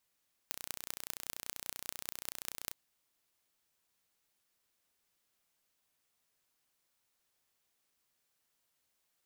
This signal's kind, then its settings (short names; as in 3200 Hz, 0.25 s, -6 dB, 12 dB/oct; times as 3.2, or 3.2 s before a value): pulse train 30.4/s, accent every 6, -9 dBFS 2.22 s